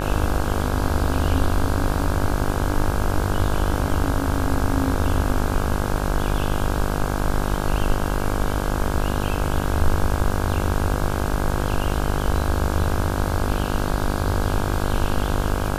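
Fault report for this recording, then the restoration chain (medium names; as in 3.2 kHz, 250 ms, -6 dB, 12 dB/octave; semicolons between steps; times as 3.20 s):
buzz 50 Hz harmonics 33 -25 dBFS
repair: de-hum 50 Hz, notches 33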